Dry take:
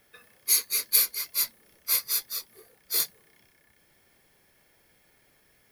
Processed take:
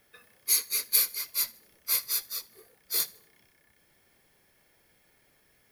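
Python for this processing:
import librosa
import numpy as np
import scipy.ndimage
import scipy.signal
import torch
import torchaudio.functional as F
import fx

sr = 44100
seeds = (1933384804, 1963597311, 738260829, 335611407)

y = fx.echo_feedback(x, sr, ms=78, feedback_pct=41, wet_db=-23)
y = y * 10.0 ** (-2.0 / 20.0)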